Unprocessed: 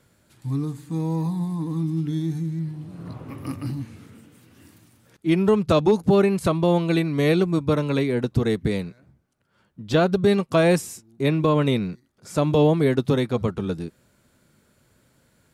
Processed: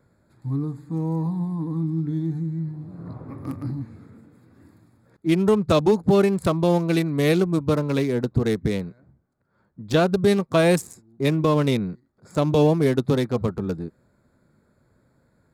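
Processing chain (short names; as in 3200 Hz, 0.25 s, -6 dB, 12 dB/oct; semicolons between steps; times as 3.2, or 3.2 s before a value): Wiener smoothing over 15 samples; high shelf 5800 Hz +10 dB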